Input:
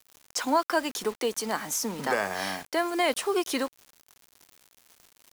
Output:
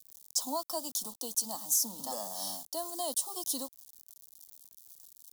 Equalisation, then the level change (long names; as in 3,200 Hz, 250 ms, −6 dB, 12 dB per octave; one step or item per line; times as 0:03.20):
Butterworth band-reject 2,300 Hz, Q 1.2
first-order pre-emphasis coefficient 0.8
phaser with its sweep stopped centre 410 Hz, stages 6
+3.5 dB